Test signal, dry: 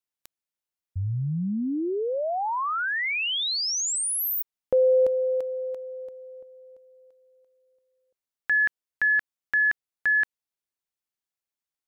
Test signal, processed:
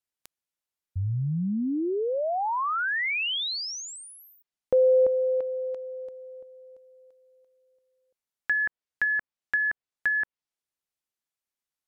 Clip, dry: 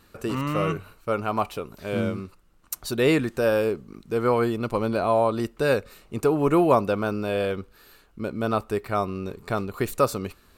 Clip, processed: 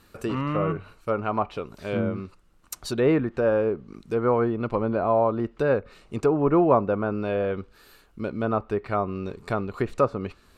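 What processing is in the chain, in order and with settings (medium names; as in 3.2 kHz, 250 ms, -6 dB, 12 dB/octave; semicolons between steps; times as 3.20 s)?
low-pass that closes with the level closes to 1.5 kHz, closed at -20.5 dBFS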